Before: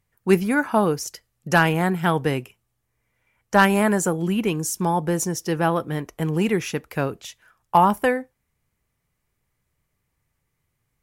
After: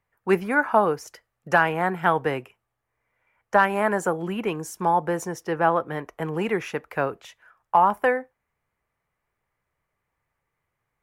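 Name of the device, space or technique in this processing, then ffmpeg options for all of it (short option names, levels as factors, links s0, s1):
DJ mixer with the lows and highs turned down: -filter_complex "[0:a]asettb=1/sr,asplit=3[s0][s1][s2];[s0]atrim=end=5.434[s3];[s1]atrim=start=5.43:end=5.86,asetpts=PTS-STARTPTS,afade=t=in:d=0.004:c=qsin,afade=t=out:st=0.426:d=0.004:c=qsin,equalizer=f=11000:t=o:w=2.4:g=-5[s4];[s2]atrim=start=5.856[s5];[s3][s4]acrossfade=d=0.004:c1=hsin:c2=qsin[s6];[s6][s5]acrossfade=d=0.004:c1=qsin:c2=hsin,acrossover=split=460 2200:gain=0.251 1 0.178[s7][s8][s9];[s7][s8][s9]amix=inputs=3:normalize=0,alimiter=limit=0.335:level=0:latency=1:release=408,volume=1.5"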